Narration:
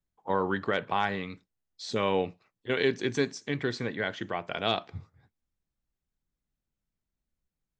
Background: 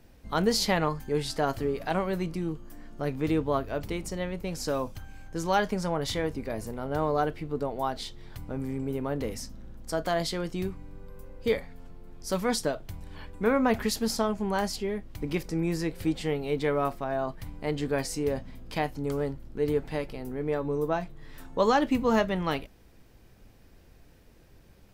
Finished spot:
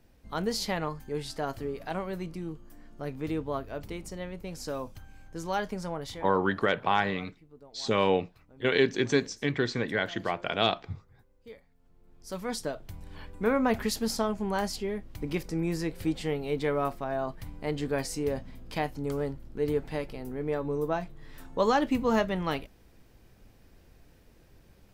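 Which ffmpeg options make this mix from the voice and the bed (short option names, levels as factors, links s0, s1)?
-filter_complex "[0:a]adelay=5950,volume=1.33[s0];[1:a]volume=5.31,afade=t=out:st=5.92:d=0.47:silence=0.158489,afade=t=in:st=11.78:d=1.39:silence=0.1[s1];[s0][s1]amix=inputs=2:normalize=0"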